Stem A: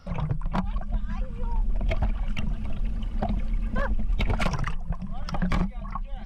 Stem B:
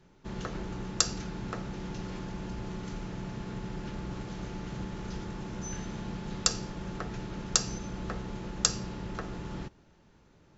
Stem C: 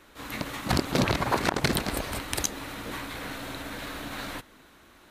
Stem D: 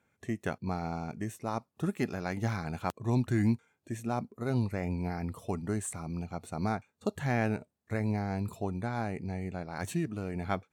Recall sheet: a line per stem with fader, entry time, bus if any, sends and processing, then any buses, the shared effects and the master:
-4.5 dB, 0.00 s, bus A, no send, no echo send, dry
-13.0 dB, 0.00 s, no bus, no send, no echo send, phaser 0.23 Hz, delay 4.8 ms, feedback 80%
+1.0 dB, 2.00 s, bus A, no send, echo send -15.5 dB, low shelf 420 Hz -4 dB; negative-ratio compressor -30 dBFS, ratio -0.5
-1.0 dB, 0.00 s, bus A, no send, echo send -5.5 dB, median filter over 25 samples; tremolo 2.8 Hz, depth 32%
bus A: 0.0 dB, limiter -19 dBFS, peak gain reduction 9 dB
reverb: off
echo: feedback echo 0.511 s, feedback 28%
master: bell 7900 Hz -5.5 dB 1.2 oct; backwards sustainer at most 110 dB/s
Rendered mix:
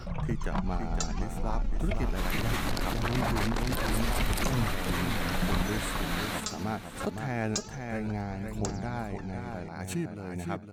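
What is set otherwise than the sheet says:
stem D: missing median filter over 25 samples; master: missing bell 7900 Hz -5.5 dB 1.2 oct

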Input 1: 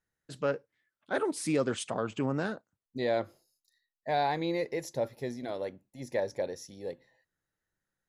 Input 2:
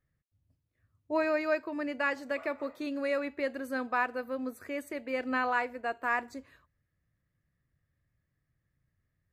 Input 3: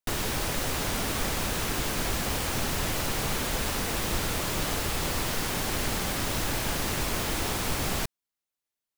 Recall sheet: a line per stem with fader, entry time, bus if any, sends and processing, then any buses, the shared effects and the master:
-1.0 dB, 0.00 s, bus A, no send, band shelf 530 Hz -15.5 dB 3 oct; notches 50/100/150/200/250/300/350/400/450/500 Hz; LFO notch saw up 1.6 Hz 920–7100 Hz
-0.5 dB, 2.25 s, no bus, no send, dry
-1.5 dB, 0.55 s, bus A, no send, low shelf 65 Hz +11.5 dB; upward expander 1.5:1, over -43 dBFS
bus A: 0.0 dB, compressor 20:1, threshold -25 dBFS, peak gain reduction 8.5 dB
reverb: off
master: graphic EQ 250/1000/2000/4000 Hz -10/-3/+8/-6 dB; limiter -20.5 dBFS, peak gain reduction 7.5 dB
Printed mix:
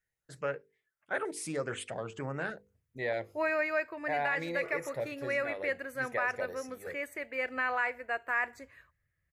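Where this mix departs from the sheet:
stem 1: missing band shelf 530 Hz -15.5 dB 3 oct; stem 3: muted

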